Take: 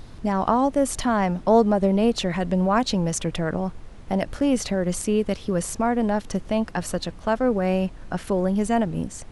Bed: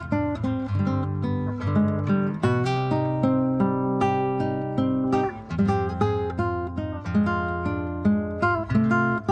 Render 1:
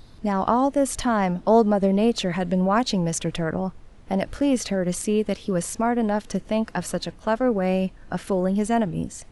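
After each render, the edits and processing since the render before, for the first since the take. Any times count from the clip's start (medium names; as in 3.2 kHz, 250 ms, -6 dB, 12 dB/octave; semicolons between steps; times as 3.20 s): noise print and reduce 6 dB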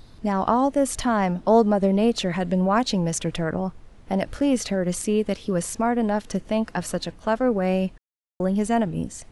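7.98–8.40 s: mute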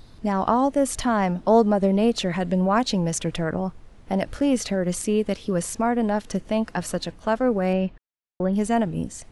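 7.73–8.53 s: low-pass 3.4 kHz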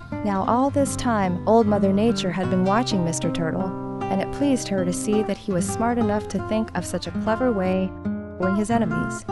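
add bed -6 dB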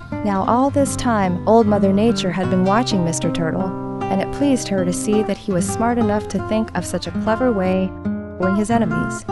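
trim +4 dB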